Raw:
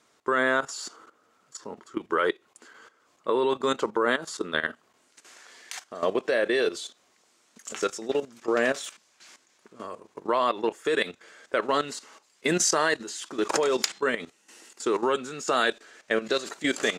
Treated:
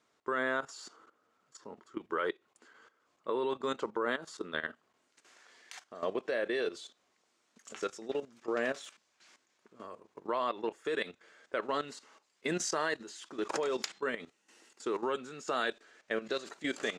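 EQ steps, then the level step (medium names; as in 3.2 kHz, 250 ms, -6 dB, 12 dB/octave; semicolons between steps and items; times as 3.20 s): treble shelf 8.6 kHz -11.5 dB; -8.5 dB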